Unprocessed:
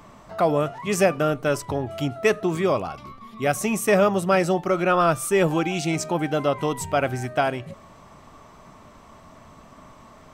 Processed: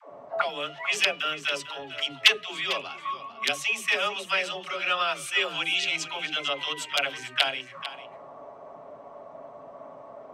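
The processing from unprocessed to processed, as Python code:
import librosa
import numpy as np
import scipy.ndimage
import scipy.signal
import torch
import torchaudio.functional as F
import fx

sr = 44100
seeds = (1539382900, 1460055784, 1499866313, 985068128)

p1 = x + 0.42 * np.pad(x, (int(7.2 * sr / 1000.0), 0))[:len(x)]
p2 = fx.rider(p1, sr, range_db=4, speed_s=2.0)
p3 = p1 + F.gain(torch.from_numpy(p2), 0.0).numpy()
p4 = (np.mod(10.0 ** (1.0 / 20.0) * p3 + 1.0, 2.0) - 1.0) / 10.0 ** (1.0 / 20.0)
p5 = fx.auto_wah(p4, sr, base_hz=510.0, top_hz=3100.0, q=3.2, full_db=-16.0, direction='up')
p6 = fx.dispersion(p5, sr, late='lows', ms=116.0, hz=350.0)
p7 = p6 + fx.echo_single(p6, sr, ms=448, db=-13.5, dry=0)
y = F.gain(torch.from_numpy(p7), 4.0).numpy()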